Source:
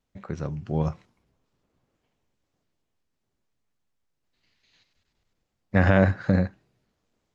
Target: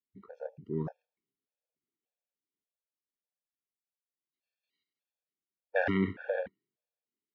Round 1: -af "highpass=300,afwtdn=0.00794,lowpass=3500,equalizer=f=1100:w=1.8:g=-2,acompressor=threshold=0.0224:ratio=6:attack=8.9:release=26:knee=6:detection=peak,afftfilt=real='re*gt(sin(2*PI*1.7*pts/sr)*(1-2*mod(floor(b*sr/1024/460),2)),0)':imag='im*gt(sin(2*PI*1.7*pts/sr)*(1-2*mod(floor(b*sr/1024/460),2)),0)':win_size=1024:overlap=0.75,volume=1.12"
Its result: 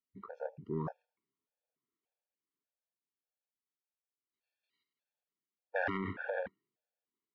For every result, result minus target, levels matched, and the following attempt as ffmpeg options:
compression: peak gain reduction +12 dB; 1 kHz band +5.0 dB
-af "highpass=300,afwtdn=0.00794,lowpass=3500,equalizer=f=1100:w=1.8:g=-2,afftfilt=real='re*gt(sin(2*PI*1.7*pts/sr)*(1-2*mod(floor(b*sr/1024/460),2)),0)':imag='im*gt(sin(2*PI*1.7*pts/sr)*(1-2*mod(floor(b*sr/1024/460),2)),0)':win_size=1024:overlap=0.75,volume=1.12"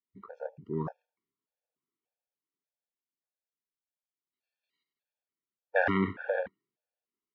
1 kHz band +4.0 dB
-af "highpass=300,afwtdn=0.00794,lowpass=3500,equalizer=f=1100:w=1.8:g=-13.5,afftfilt=real='re*gt(sin(2*PI*1.7*pts/sr)*(1-2*mod(floor(b*sr/1024/460),2)),0)':imag='im*gt(sin(2*PI*1.7*pts/sr)*(1-2*mod(floor(b*sr/1024/460),2)),0)':win_size=1024:overlap=0.75,volume=1.12"

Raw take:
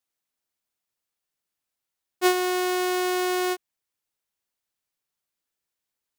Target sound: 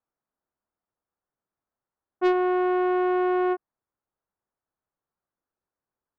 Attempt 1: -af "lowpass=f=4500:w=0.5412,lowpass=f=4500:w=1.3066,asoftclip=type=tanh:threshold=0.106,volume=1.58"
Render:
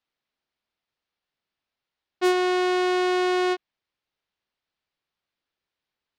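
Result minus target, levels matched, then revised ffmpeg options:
4 kHz band +14.5 dB
-af "lowpass=f=1400:w=0.5412,lowpass=f=1400:w=1.3066,asoftclip=type=tanh:threshold=0.106,volume=1.58"

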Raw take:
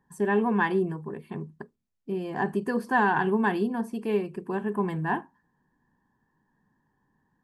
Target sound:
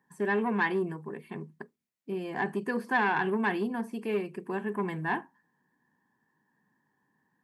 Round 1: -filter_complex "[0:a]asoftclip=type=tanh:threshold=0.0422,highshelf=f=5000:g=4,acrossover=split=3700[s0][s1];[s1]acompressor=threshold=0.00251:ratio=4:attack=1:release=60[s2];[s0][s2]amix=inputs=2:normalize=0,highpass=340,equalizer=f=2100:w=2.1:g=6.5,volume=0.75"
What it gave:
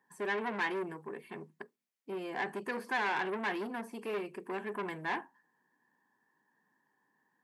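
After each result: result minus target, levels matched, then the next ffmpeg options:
125 Hz band -6.5 dB; saturation: distortion +9 dB
-filter_complex "[0:a]asoftclip=type=tanh:threshold=0.0422,highshelf=f=5000:g=4,acrossover=split=3700[s0][s1];[s1]acompressor=threshold=0.00251:ratio=4:attack=1:release=60[s2];[s0][s2]amix=inputs=2:normalize=0,highpass=160,equalizer=f=2100:w=2.1:g=6.5,volume=0.75"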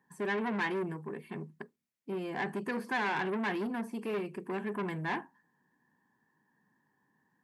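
saturation: distortion +9 dB
-filter_complex "[0:a]asoftclip=type=tanh:threshold=0.133,highshelf=f=5000:g=4,acrossover=split=3700[s0][s1];[s1]acompressor=threshold=0.00251:ratio=4:attack=1:release=60[s2];[s0][s2]amix=inputs=2:normalize=0,highpass=160,equalizer=f=2100:w=2.1:g=6.5,volume=0.75"

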